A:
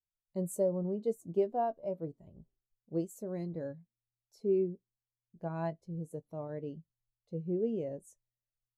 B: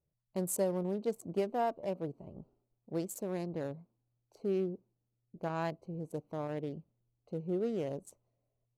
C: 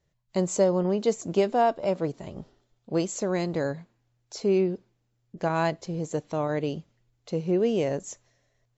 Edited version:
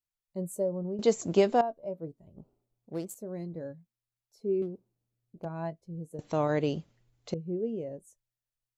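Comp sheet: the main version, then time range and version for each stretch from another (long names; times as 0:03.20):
A
0:00.99–0:01.61: punch in from C
0:02.37–0:03.15: punch in from B
0:04.62–0:05.45: punch in from B
0:06.19–0:07.34: punch in from C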